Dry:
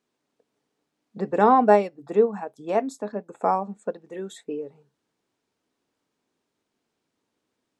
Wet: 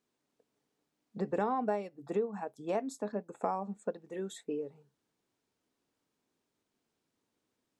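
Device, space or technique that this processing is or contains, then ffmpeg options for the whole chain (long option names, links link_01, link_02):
ASMR close-microphone chain: -af "lowshelf=frequency=170:gain=4.5,acompressor=threshold=-23dB:ratio=6,highshelf=frequency=6600:gain=4.5,volume=-5.5dB"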